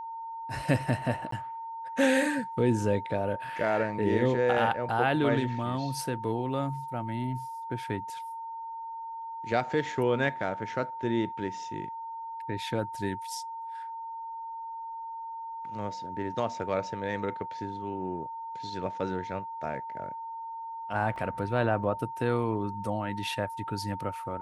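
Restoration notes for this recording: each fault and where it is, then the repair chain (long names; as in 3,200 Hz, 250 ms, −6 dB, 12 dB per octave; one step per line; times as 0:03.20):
whistle 910 Hz −36 dBFS
0:01.31–0:01.32: drop-out 13 ms
0:21.16: drop-out 2.2 ms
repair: notch filter 910 Hz, Q 30
repair the gap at 0:01.31, 13 ms
repair the gap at 0:21.16, 2.2 ms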